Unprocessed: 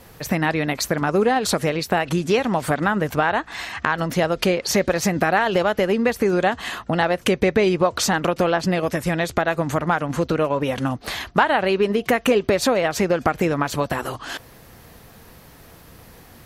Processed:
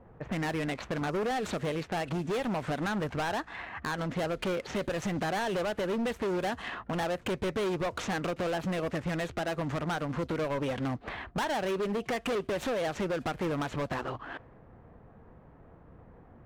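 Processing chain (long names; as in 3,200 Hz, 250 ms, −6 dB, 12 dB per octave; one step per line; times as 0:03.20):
running median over 9 samples
low-pass that shuts in the quiet parts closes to 1,000 Hz, open at −16.5 dBFS
hard clipping −21.5 dBFS, distortion −7 dB
level −6.5 dB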